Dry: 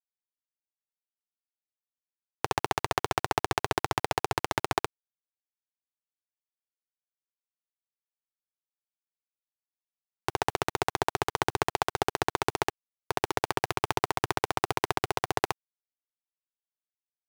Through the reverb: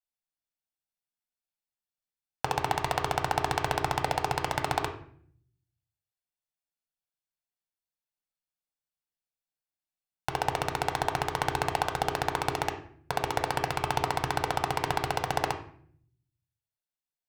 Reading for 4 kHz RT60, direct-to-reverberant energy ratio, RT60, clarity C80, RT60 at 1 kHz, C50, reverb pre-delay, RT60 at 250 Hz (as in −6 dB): 0.40 s, 4.0 dB, 0.55 s, 13.5 dB, 0.50 s, 9.5 dB, 4 ms, 0.85 s